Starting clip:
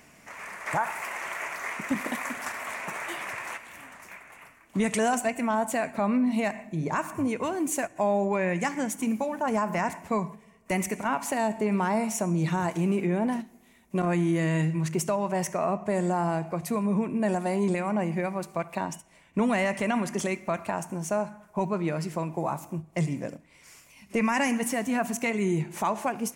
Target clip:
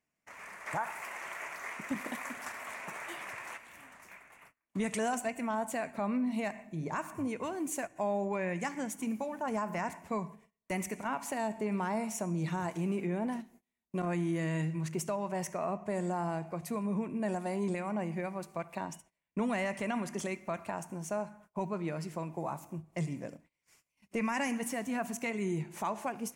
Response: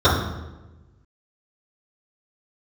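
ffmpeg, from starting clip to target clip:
-af "agate=range=0.0631:threshold=0.00316:ratio=16:detection=peak,volume=0.422"

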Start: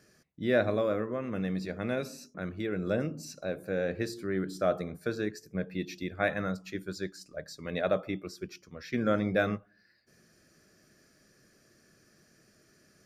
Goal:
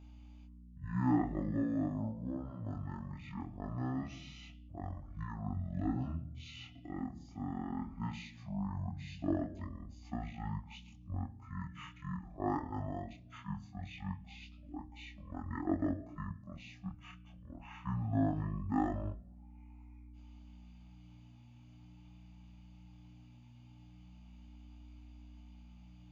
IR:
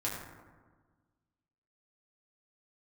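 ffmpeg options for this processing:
-filter_complex "[0:a]asetrate=22050,aresample=44100,aeval=exprs='val(0)+0.00501*(sin(2*PI*60*n/s)+sin(2*PI*2*60*n/s)/2+sin(2*PI*3*60*n/s)/3+sin(2*PI*4*60*n/s)/4+sin(2*PI*5*60*n/s)/5)':c=same,asplit=2[s0][s1];[1:a]atrim=start_sample=2205,asetrate=83790,aresample=44100[s2];[s1][s2]afir=irnorm=-1:irlink=0,volume=0.119[s3];[s0][s3]amix=inputs=2:normalize=0,flanger=delay=20:depth=7.8:speed=0.2,volume=0.631"

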